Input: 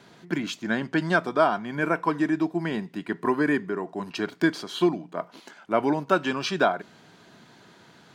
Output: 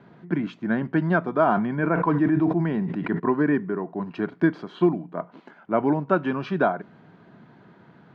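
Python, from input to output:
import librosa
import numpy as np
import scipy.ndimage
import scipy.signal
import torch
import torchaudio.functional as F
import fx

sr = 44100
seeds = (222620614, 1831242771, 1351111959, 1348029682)

y = scipy.signal.sosfilt(scipy.signal.butter(2, 1700.0, 'lowpass', fs=sr, output='sos'), x)
y = fx.peak_eq(y, sr, hz=160.0, db=6.0, octaves=1.5)
y = fx.sustainer(y, sr, db_per_s=38.0, at=(1.46, 3.18), fade=0.02)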